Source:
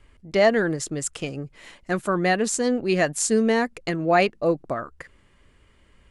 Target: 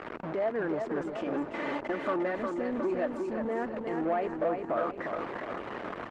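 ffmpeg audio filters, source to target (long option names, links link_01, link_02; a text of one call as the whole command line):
ffmpeg -i in.wav -filter_complex "[0:a]aeval=exprs='val(0)+0.5*0.0447*sgn(val(0))':channel_layout=same,acompressor=threshold=-27dB:ratio=6,equalizer=frequency=500:width_type=o:width=0.47:gain=-3,alimiter=limit=-24dB:level=0:latency=1:release=113,lowpass=1100,aeval=exprs='val(0)+0.00562*(sin(2*PI*50*n/s)+sin(2*PI*2*50*n/s)/2+sin(2*PI*3*50*n/s)/3+sin(2*PI*4*50*n/s)/4+sin(2*PI*5*50*n/s)/5)':channel_layout=same,asettb=1/sr,asplit=3[link_01][link_02][link_03];[link_01]atrim=end=1.064[link_04];[link_02]atrim=start=1.06:end=3.45,asetpts=PTS-STARTPTS,afade=type=in:duration=0.004:curve=qsin,afade=type=out:start_time=2.386:duration=0.004:curve=qsin,aecho=1:1:3.4:0.62,atrim=end_sample=105399[link_05];[link_03]atrim=start=3.446[link_06];[link_04][link_05]acrossfade=duration=0.004:curve1=hsin:curve2=qsin[link_07];[link_07][link_06]acrossfade=duration=0.004:curve1=qsin:curve2=hsin,aecho=1:1:356|712|1068|1424|1780|2136|2492:0.562|0.315|0.176|0.0988|0.0553|0.031|0.0173,asoftclip=type=tanh:threshold=-25dB,highpass=360,volume=6dB" -ar 48000 -c:a libopus -b:a 16k out.opus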